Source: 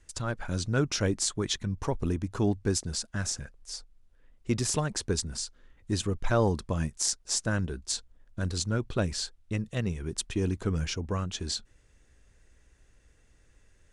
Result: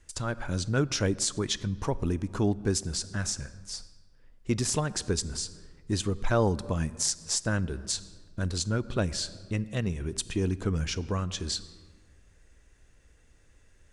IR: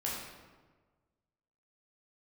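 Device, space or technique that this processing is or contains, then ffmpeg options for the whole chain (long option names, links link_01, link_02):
ducked reverb: -filter_complex "[0:a]asplit=3[link_01][link_02][link_03];[1:a]atrim=start_sample=2205[link_04];[link_02][link_04]afir=irnorm=-1:irlink=0[link_05];[link_03]apad=whole_len=614019[link_06];[link_05][link_06]sidechaincompress=threshold=-34dB:ratio=8:attack=16:release=189,volume=-13dB[link_07];[link_01][link_07]amix=inputs=2:normalize=0"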